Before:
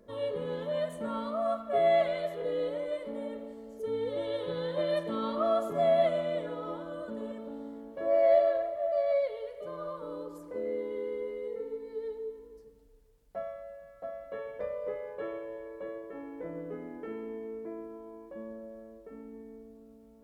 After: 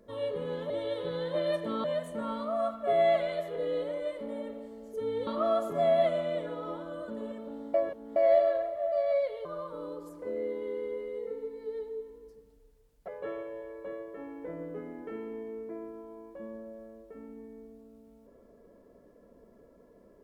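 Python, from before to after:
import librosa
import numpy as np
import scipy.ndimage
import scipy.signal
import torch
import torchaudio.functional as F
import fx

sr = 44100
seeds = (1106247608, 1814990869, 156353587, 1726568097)

y = fx.edit(x, sr, fx.move(start_s=4.13, length_s=1.14, to_s=0.7),
    fx.reverse_span(start_s=7.74, length_s=0.42),
    fx.cut(start_s=9.45, length_s=0.29),
    fx.cut(start_s=13.37, length_s=1.67), tone=tone)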